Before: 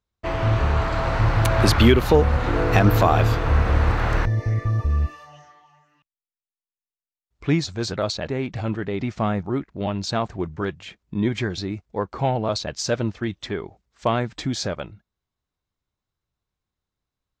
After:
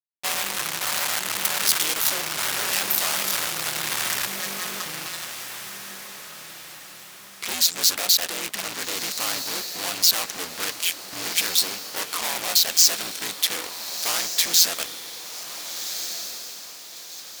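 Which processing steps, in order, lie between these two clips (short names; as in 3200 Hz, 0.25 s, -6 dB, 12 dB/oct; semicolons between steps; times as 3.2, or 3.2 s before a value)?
ring modulator 86 Hz; in parallel at -1 dB: compressor, threshold -28 dBFS, peak gain reduction 15 dB; on the sum: fuzz box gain 35 dB, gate -38 dBFS; differentiator; on a send: diffused feedback echo 1.481 s, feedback 43%, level -9.5 dB; on the sum: gain +4 dB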